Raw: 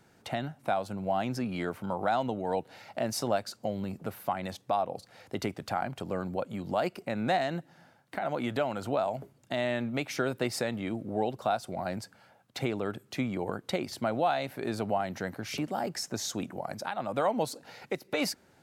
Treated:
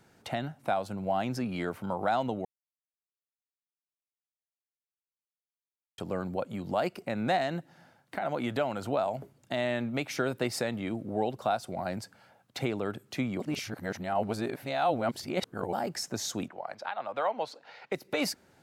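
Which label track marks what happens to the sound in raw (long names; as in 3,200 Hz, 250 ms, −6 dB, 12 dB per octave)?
2.450000	5.980000	silence
13.400000	15.730000	reverse
16.480000	17.920000	three-way crossover with the lows and the highs turned down lows −16 dB, under 480 Hz, highs −22 dB, over 4,700 Hz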